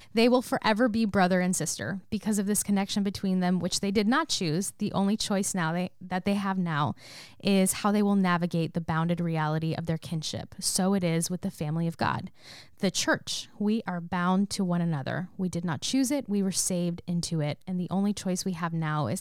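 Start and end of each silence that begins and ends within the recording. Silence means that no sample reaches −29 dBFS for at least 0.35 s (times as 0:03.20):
0:06.91–0:07.45
0:12.20–0:12.83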